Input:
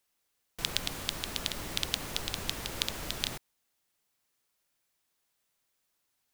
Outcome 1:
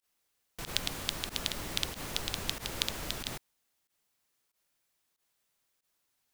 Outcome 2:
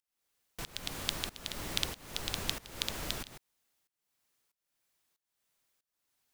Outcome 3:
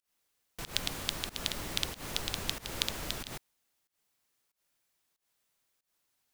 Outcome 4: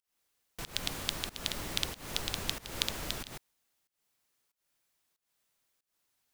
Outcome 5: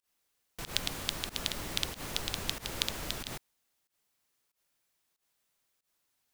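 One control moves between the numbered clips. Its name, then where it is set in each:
volume shaper, release: 69 ms, 520 ms, 168 ms, 259 ms, 114 ms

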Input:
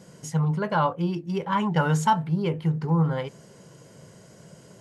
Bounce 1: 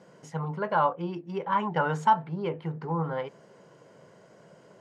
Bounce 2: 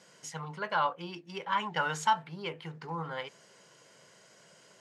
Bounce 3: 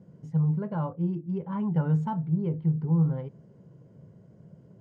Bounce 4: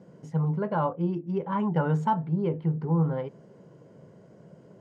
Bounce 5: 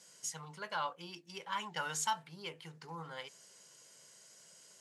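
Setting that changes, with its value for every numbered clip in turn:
band-pass filter, frequency: 850 Hz, 2.7 kHz, 110 Hz, 320 Hz, 7.2 kHz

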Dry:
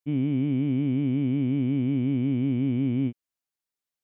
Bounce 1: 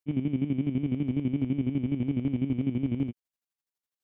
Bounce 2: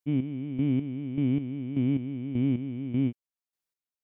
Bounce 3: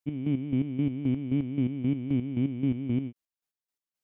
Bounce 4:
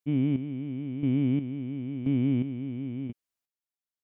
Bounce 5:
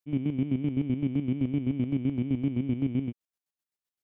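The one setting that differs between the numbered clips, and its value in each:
square tremolo, rate: 12 Hz, 1.7 Hz, 3.8 Hz, 0.97 Hz, 7.8 Hz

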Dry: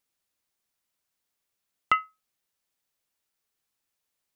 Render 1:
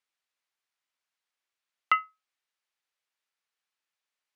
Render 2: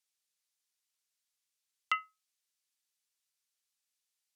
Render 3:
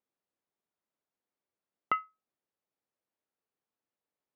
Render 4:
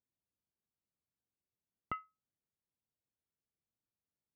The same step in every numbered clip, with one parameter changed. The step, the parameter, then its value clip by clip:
band-pass filter, frequency: 1.9 kHz, 6.1 kHz, 390 Hz, 110 Hz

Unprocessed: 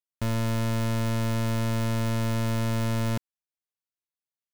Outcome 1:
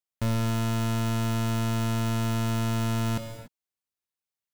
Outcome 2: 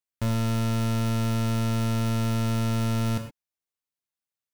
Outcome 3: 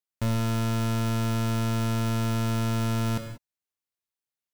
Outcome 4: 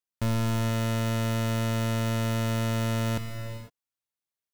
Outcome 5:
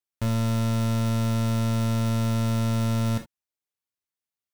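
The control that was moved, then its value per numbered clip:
gated-style reverb, gate: 310 ms, 140 ms, 210 ms, 530 ms, 90 ms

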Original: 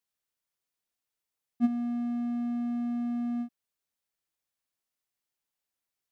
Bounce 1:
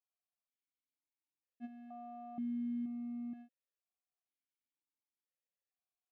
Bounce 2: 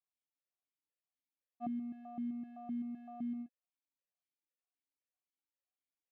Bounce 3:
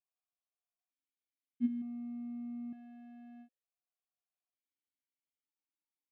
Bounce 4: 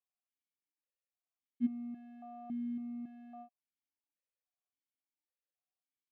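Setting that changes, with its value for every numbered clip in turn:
stepped vowel filter, rate: 2.1 Hz, 7.8 Hz, 1.1 Hz, 3.6 Hz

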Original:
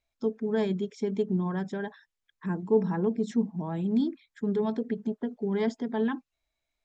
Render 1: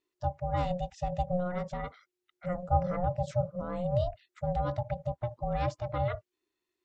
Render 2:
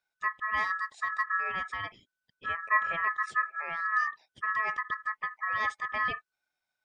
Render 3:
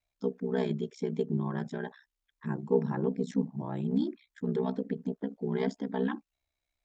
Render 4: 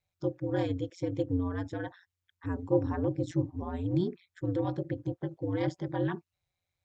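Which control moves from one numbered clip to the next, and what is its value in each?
ring modulator, frequency: 360 Hz, 1.5 kHz, 32 Hz, 89 Hz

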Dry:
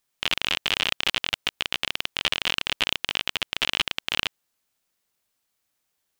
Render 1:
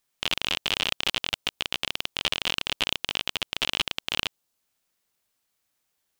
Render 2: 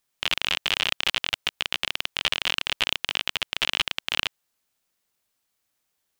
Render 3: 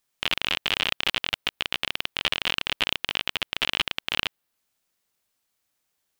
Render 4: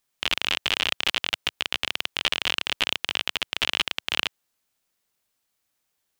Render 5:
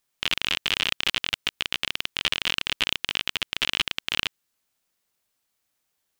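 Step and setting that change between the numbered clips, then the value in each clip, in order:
dynamic bell, frequency: 1.8 kHz, 260 Hz, 6.8 kHz, 100 Hz, 700 Hz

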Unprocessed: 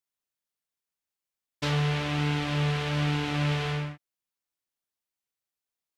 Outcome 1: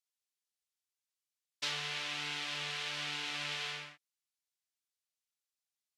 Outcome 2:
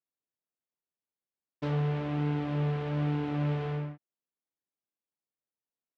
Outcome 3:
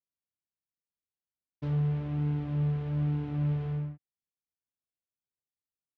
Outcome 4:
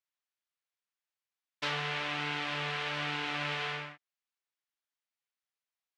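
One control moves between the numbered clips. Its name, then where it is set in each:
band-pass filter, frequency: 5.7 kHz, 300 Hz, 100 Hz, 1.9 kHz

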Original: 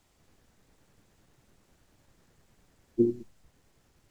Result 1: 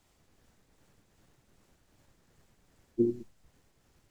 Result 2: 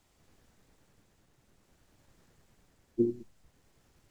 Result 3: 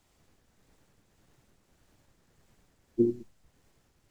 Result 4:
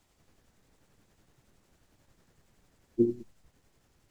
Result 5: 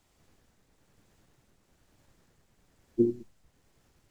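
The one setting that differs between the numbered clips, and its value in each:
tremolo, rate: 2.6 Hz, 0.57 Hz, 1.7 Hz, 11 Hz, 1.1 Hz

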